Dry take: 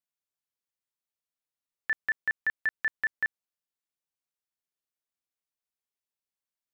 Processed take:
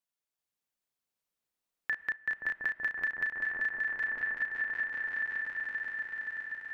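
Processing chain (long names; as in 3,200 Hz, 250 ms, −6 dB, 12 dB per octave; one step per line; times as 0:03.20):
feedback delay that plays each chunk backwards 384 ms, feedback 69%, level −2 dB
low-shelf EQ 430 Hz +3 dB
echo whose low-pass opens from repeat to repeat 524 ms, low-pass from 750 Hz, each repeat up 1 octave, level 0 dB
on a send at −16.5 dB: convolution reverb RT60 2.2 s, pre-delay 8 ms
on the sum: downward compressor 10 to 1, threshold −29 dBFS, peak gain reduction 9 dB
parametric band 80 Hz −5.5 dB 2.5 octaves
0:02.16–0:02.61: multiband upward and downward expander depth 40%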